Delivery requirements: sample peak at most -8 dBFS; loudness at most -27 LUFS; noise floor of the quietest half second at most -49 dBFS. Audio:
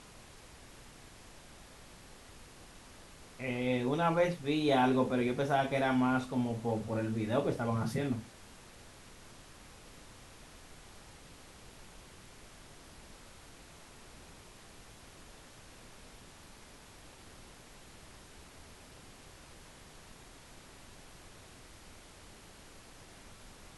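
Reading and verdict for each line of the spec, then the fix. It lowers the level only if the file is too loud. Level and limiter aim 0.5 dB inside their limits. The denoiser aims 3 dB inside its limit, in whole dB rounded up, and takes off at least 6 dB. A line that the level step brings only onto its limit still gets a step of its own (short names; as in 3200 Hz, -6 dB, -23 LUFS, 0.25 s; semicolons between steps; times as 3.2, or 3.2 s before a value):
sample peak -16.0 dBFS: OK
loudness -32.0 LUFS: OK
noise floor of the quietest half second -54 dBFS: OK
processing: none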